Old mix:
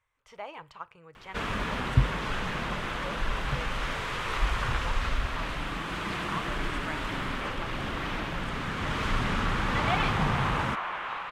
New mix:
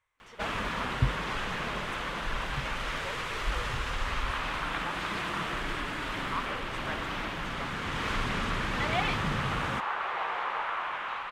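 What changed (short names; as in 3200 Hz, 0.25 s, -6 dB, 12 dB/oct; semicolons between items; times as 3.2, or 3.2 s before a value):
first sound: entry -0.95 s; master: add low shelf 330 Hz -5 dB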